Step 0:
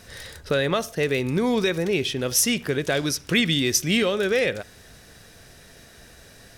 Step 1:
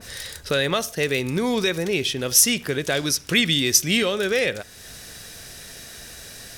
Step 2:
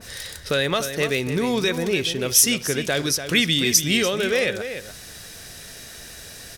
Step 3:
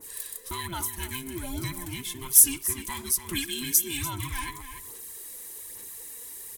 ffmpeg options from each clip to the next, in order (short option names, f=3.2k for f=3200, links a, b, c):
-af "highshelf=f=2.4k:g=10,acompressor=mode=upward:threshold=-32dB:ratio=2.5,adynamicequalizer=threshold=0.0224:dfrequency=1900:dqfactor=0.7:tfrequency=1900:tqfactor=0.7:attack=5:release=100:ratio=0.375:range=1.5:mode=cutabove:tftype=highshelf,volume=-1dB"
-filter_complex "[0:a]asplit=2[a][b];[b]adelay=291.5,volume=-9dB,highshelf=f=4k:g=-6.56[c];[a][c]amix=inputs=2:normalize=0"
-af "afftfilt=real='real(if(between(b,1,1008),(2*floor((b-1)/24)+1)*24-b,b),0)':imag='imag(if(between(b,1,1008),(2*floor((b-1)/24)+1)*24-b,b),0)*if(between(b,1,1008),-1,1)':win_size=2048:overlap=0.75,aphaser=in_gain=1:out_gain=1:delay=4.1:decay=0.42:speed=1.2:type=sinusoidal,aexciter=amount=7.8:drive=4.8:freq=7.6k,volume=-14dB"